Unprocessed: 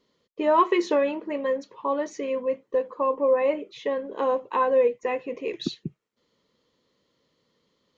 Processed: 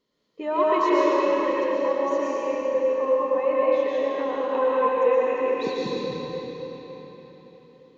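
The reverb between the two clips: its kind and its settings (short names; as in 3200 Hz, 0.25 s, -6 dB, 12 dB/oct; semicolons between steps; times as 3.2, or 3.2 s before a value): digital reverb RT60 4.6 s, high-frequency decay 0.8×, pre-delay 80 ms, DRR -8 dB; gain -6.5 dB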